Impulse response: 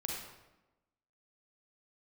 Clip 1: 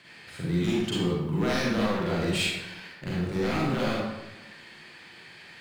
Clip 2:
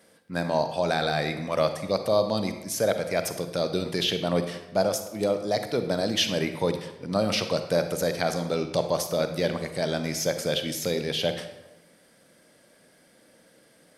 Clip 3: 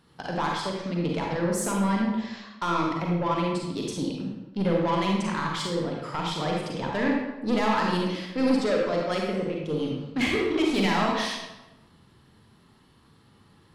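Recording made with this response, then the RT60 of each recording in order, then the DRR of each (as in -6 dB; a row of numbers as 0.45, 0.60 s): 3; 1.0, 1.0, 1.0 s; -6.5, 8.0, -1.5 dB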